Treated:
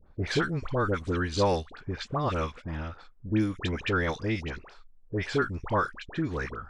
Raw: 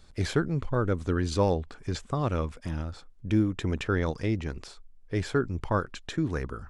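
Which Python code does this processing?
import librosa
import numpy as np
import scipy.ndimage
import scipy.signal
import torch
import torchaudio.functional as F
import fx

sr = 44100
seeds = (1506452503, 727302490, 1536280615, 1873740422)

y = fx.env_lowpass(x, sr, base_hz=820.0, full_db=-20.5)
y = fx.tilt_shelf(y, sr, db=-4.5, hz=720.0)
y = fx.dispersion(y, sr, late='highs', ms=67.0, hz=1200.0)
y = y * librosa.db_to_amplitude(1.5)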